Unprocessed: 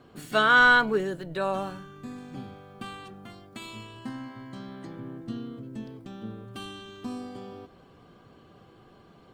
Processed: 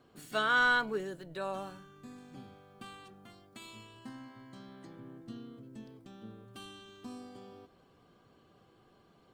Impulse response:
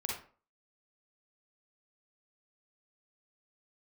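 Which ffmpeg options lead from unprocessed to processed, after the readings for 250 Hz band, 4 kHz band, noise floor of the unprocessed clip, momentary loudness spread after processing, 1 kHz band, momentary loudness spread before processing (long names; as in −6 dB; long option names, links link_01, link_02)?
−10.0 dB, −7.5 dB, −55 dBFS, 24 LU, −9.0 dB, 23 LU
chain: -af "bass=frequency=250:gain=-2,treble=frequency=4000:gain=4,volume=-9dB"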